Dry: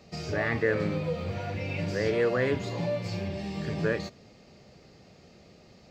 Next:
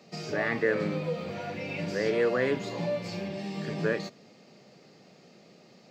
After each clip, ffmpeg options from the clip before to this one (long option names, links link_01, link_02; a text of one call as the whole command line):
ffmpeg -i in.wav -af "highpass=frequency=150:width=0.5412,highpass=frequency=150:width=1.3066" out.wav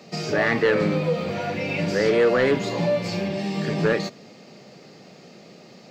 ffmpeg -i in.wav -af "aeval=exprs='0.237*sin(PI/2*1.78*val(0)/0.237)':channel_layout=same" out.wav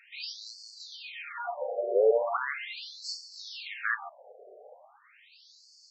ffmpeg -i in.wav -af "afftfilt=real='re*between(b*sr/1024,530*pow(6100/530,0.5+0.5*sin(2*PI*0.39*pts/sr))/1.41,530*pow(6100/530,0.5+0.5*sin(2*PI*0.39*pts/sr))*1.41)':imag='im*between(b*sr/1024,530*pow(6100/530,0.5+0.5*sin(2*PI*0.39*pts/sr))/1.41,530*pow(6100/530,0.5+0.5*sin(2*PI*0.39*pts/sr))*1.41)':win_size=1024:overlap=0.75" out.wav